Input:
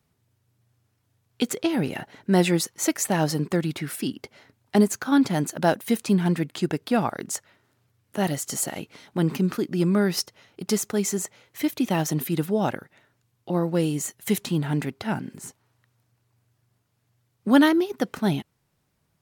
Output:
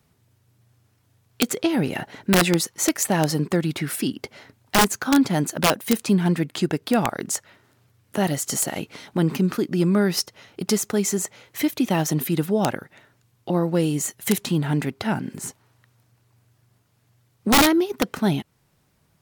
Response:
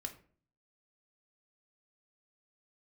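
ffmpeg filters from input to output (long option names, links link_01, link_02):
-filter_complex "[0:a]asplit=2[link_01][link_02];[link_02]acompressor=threshold=-32dB:ratio=12,volume=2dB[link_03];[link_01][link_03]amix=inputs=2:normalize=0,aeval=exprs='(mod(3.16*val(0)+1,2)-1)/3.16':channel_layout=same"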